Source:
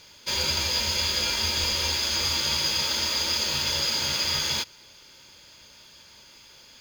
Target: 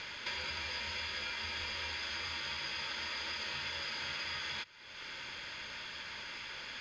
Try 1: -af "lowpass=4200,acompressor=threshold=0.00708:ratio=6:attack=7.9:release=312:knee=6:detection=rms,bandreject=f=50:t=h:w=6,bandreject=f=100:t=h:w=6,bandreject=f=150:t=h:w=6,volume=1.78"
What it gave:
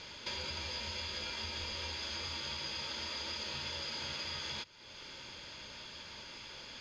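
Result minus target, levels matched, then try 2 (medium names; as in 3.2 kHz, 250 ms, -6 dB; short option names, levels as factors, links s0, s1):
2 kHz band -4.5 dB
-af "lowpass=4200,equalizer=f=1800:w=0.87:g=11.5,acompressor=threshold=0.00708:ratio=6:attack=7.9:release=312:knee=6:detection=rms,bandreject=f=50:t=h:w=6,bandreject=f=100:t=h:w=6,bandreject=f=150:t=h:w=6,volume=1.78"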